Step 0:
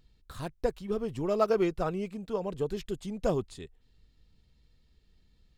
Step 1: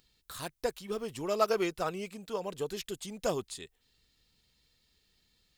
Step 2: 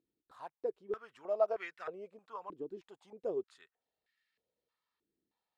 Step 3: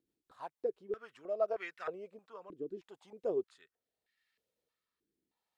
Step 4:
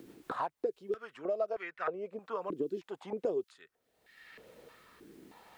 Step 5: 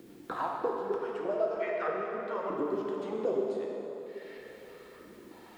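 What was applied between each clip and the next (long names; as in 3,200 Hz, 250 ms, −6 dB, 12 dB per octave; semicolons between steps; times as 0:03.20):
spectral tilt +3 dB per octave
band-pass on a step sequencer 3.2 Hz 320–1,800 Hz; level +1 dB
rotating-speaker cabinet horn 6.3 Hz, later 0.8 Hz, at 0:00.45; level +3 dB
multiband upward and downward compressor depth 100%; level +3.5 dB
dense smooth reverb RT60 3.6 s, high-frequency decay 0.65×, DRR −2 dB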